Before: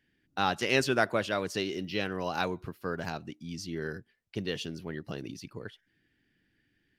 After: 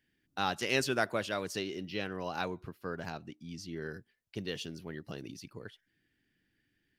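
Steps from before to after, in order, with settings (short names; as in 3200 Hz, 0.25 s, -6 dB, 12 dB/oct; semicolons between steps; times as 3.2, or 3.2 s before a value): high shelf 5100 Hz +6 dB, from 1.59 s -2 dB, from 3.93 s +4.5 dB; gain -4.5 dB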